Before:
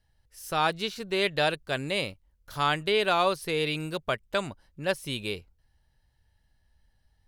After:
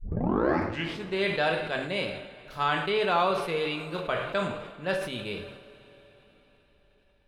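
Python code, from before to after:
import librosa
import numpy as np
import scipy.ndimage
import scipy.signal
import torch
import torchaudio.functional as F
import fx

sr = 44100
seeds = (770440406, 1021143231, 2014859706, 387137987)

y = fx.tape_start_head(x, sr, length_s=1.1)
y = fx.lowpass(y, sr, hz=2000.0, slope=6)
y = fx.low_shelf(y, sr, hz=440.0, db=-4.5)
y = fx.rev_double_slope(y, sr, seeds[0], early_s=0.55, late_s=4.7, knee_db=-18, drr_db=3.0)
y = fx.sustainer(y, sr, db_per_s=59.0)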